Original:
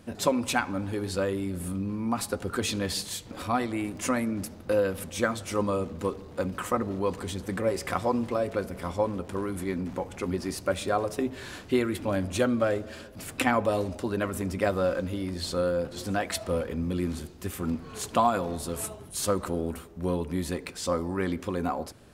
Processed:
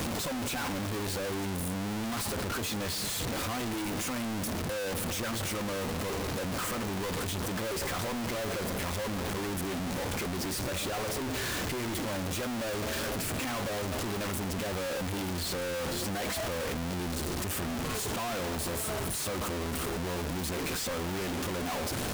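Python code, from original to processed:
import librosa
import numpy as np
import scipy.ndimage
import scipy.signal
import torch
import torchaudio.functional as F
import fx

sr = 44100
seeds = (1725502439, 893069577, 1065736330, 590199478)

y = np.sign(x) * np.sqrt(np.mean(np.square(x)))
y = fx.band_squash(y, sr, depth_pct=40)
y = y * 10.0 ** (-4.0 / 20.0)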